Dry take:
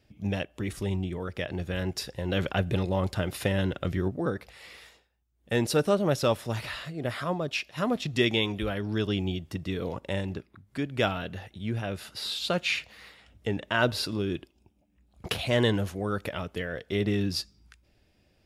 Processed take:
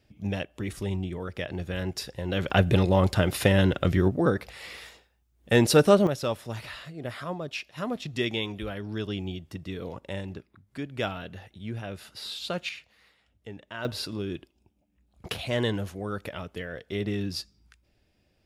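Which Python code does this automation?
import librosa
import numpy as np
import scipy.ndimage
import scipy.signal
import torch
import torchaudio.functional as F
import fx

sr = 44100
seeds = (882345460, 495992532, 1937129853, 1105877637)

y = fx.gain(x, sr, db=fx.steps((0.0, -0.5), (2.5, 6.0), (6.07, -4.0), (12.69, -12.0), (13.85, -3.0)))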